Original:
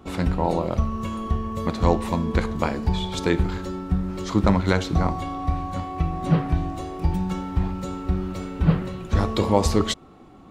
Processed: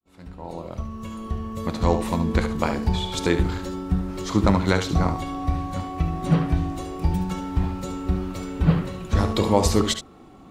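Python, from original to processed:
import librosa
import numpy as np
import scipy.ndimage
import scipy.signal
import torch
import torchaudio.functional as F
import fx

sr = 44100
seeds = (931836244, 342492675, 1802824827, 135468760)

p1 = fx.fade_in_head(x, sr, length_s=2.25)
p2 = fx.high_shelf(p1, sr, hz=5700.0, db=5.5)
y = p2 + fx.echo_single(p2, sr, ms=72, db=-9.5, dry=0)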